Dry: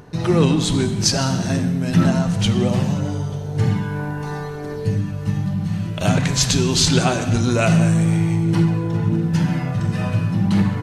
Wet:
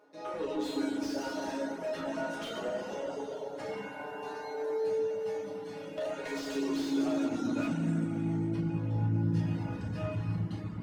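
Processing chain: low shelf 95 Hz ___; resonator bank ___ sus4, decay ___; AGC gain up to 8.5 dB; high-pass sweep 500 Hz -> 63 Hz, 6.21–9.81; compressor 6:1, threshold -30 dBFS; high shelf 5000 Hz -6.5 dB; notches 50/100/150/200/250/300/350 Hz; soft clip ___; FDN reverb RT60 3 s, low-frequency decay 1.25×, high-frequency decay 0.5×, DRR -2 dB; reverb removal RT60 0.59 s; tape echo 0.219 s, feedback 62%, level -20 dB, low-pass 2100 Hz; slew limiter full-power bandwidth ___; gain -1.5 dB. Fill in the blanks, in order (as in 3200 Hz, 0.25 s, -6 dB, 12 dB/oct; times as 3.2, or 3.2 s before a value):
+9.5 dB, G#3, 0.26 s, -29.5 dBFS, 35 Hz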